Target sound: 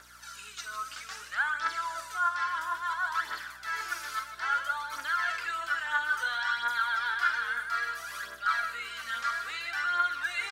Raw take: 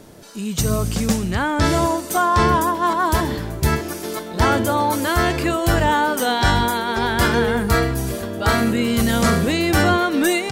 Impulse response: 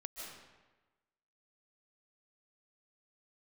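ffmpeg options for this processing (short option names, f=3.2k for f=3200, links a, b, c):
-filter_complex "[0:a]acrossover=split=5200[a][b];[b]acompressor=threshold=-40dB:ratio=4:attack=1:release=60[c];[a][c]amix=inputs=2:normalize=0,equalizer=f=5.6k:w=0.66:g=4.5,areverse,acompressor=threshold=-25dB:ratio=6,areverse,aecho=1:1:46.65|151.6:0.282|0.282,aphaser=in_gain=1:out_gain=1:delay=4:decay=0.54:speed=0.6:type=triangular,highpass=f=1.4k:t=q:w=4.9,aeval=exprs='val(0)+0.00178*(sin(2*PI*60*n/s)+sin(2*PI*2*60*n/s)/2+sin(2*PI*3*60*n/s)/3+sin(2*PI*4*60*n/s)/4+sin(2*PI*5*60*n/s)/5)':c=same,volume=-9dB"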